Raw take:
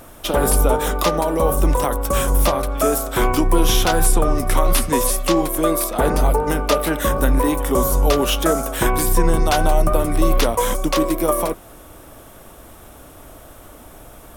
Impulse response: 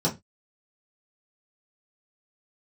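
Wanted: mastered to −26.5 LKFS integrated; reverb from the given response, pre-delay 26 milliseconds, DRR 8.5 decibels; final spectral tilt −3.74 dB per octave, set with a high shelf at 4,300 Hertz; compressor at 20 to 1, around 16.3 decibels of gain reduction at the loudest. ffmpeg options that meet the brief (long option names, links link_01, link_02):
-filter_complex "[0:a]highshelf=frequency=4300:gain=6.5,acompressor=threshold=-26dB:ratio=20,asplit=2[link_01][link_02];[1:a]atrim=start_sample=2205,adelay=26[link_03];[link_02][link_03]afir=irnorm=-1:irlink=0,volume=-19.5dB[link_04];[link_01][link_04]amix=inputs=2:normalize=0,volume=3.5dB"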